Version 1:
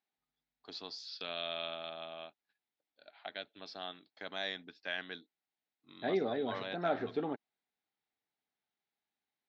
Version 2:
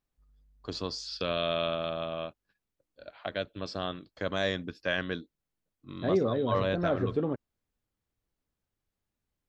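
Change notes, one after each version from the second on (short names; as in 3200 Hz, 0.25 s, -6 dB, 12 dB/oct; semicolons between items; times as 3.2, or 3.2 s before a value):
first voice +8.0 dB; master: remove speaker cabinet 330–5700 Hz, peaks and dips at 350 Hz -4 dB, 530 Hz -10 dB, 790 Hz +6 dB, 1100 Hz -6 dB, 2100 Hz +4 dB, 3800 Hz +6 dB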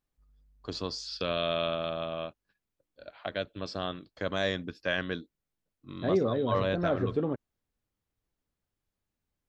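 none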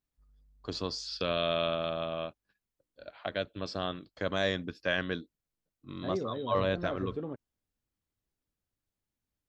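second voice -8.0 dB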